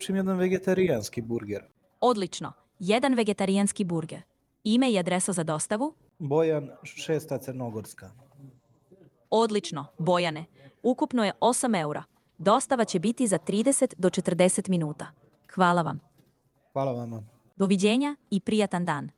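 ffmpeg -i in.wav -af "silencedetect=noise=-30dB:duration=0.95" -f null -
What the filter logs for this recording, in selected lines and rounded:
silence_start: 7.80
silence_end: 9.32 | silence_duration: 1.52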